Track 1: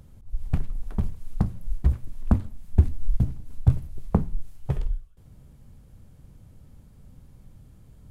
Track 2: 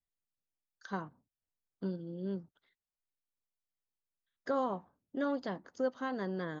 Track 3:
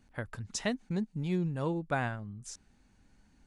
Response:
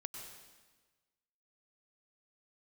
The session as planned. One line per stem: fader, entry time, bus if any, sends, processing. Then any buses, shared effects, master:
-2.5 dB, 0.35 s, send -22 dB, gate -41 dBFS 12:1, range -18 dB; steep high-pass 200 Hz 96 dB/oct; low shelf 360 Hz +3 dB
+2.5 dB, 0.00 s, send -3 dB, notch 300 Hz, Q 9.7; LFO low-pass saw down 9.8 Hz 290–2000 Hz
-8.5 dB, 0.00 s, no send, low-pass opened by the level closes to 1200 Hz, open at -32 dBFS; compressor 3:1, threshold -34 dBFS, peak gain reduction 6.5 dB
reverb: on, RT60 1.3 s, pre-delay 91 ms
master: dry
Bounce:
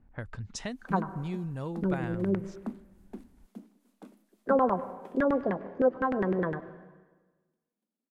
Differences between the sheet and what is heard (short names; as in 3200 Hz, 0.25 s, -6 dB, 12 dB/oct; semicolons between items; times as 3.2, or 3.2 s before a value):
stem 1 -2.5 dB -> -13.0 dB; stem 3 -8.5 dB -> -0.5 dB; master: extra low shelf 92 Hz +8 dB